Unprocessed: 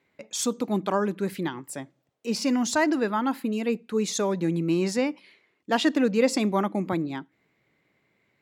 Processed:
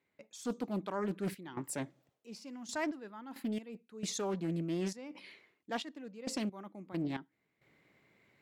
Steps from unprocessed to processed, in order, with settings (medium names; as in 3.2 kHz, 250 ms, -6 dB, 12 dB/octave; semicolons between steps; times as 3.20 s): reverse; compression 6:1, threshold -34 dBFS, peak gain reduction 16.5 dB; reverse; trance gate "..xxxx.xxx..x..x" 67 bpm -12 dB; loudspeaker Doppler distortion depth 0.32 ms; trim +1 dB